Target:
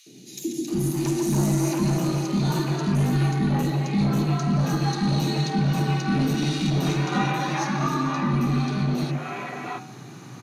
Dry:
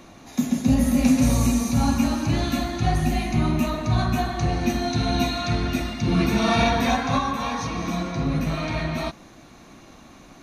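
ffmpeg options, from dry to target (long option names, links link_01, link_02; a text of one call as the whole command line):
ffmpeg -i in.wav -filter_complex "[0:a]highpass=45,afreqshift=87,asubboost=boost=4.5:cutoff=220,bandreject=frequency=75.36:width_type=h:width=4,bandreject=frequency=150.72:width_type=h:width=4,bandreject=frequency=226.08:width_type=h:width=4,bandreject=frequency=301.44:width_type=h:width=4,bandreject=frequency=376.8:width_type=h:width=4,bandreject=frequency=452.16:width_type=h:width=4,bandreject=frequency=527.52:width_type=h:width=4,bandreject=frequency=602.88:width_type=h:width=4,bandreject=frequency=678.24:width_type=h:width=4,bandreject=frequency=753.6:width_type=h:width=4,bandreject=frequency=828.96:width_type=h:width=4,bandreject=frequency=904.32:width_type=h:width=4,bandreject=frequency=979.68:width_type=h:width=4,bandreject=frequency=1055.04:width_type=h:width=4,bandreject=frequency=1130.4:width_type=h:width=4,bandreject=frequency=1205.76:width_type=h:width=4,bandreject=frequency=1281.12:width_type=h:width=4,bandreject=frequency=1356.48:width_type=h:width=4,bandreject=frequency=1431.84:width_type=h:width=4,bandreject=frequency=1507.2:width_type=h:width=4,bandreject=frequency=1582.56:width_type=h:width=4,bandreject=frequency=1657.92:width_type=h:width=4,bandreject=frequency=1733.28:width_type=h:width=4,bandreject=frequency=1808.64:width_type=h:width=4,bandreject=frequency=1884:width_type=h:width=4,bandreject=frequency=1959.36:width_type=h:width=4,bandreject=frequency=2034.72:width_type=h:width=4,bandreject=frequency=2110.08:width_type=h:width=4,bandreject=frequency=2185.44:width_type=h:width=4,bandreject=frequency=2260.8:width_type=h:width=4,bandreject=frequency=2336.16:width_type=h:width=4,bandreject=frequency=2411.52:width_type=h:width=4,bandreject=frequency=2486.88:width_type=h:width=4,bandreject=frequency=2562.24:width_type=h:width=4,bandreject=frequency=2637.6:width_type=h:width=4,bandreject=frequency=2712.96:width_type=h:width=4,bandreject=frequency=2788.32:width_type=h:width=4,bandreject=frequency=2863.68:width_type=h:width=4,asplit=2[link_01][link_02];[link_02]acompressor=threshold=-31dB:ratio=6,volume=-2dB[link_03];[link_01][link_03]amix=inputs=2:normalize=0,asubboost=boost=3.5:cutoff=95,asoftclip=type=tanh:threshold=-16.5dB,acrossover=split=370|2900[link_04][link_05][link_06];[link_04]adelay=60[link_07];[link_05]adelay=680[link_08];[link_07][link_08][link_06]amix=inputs=3:normalize=0" out.wav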